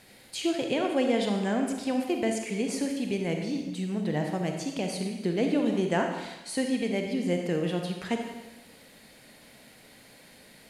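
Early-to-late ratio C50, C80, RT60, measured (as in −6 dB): 4.0 dB, 6.0 dB, 1.1 s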